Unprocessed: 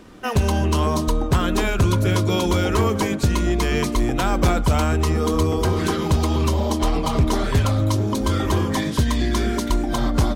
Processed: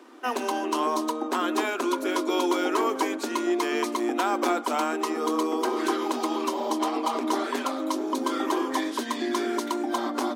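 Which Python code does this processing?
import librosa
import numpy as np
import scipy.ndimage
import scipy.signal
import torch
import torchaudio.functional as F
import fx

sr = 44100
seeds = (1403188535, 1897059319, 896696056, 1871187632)

y = scipy.signal.sosfilt(scipy.signal.cheby1(6, 6, 240.0, 'highpass', fs=sr, output='sos'), x)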